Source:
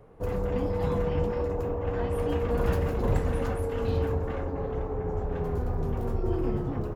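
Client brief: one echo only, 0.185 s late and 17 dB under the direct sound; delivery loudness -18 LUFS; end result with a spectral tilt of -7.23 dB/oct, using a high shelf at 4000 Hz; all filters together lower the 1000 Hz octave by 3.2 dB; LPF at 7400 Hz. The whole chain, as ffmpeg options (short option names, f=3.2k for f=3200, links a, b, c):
-af "lowpass=7.4k,equalizer=f=1k:t=o:g=-4.5,highshelf=f=4k:g=4.5,aecho=1:1:185:0.141,volume=12dB"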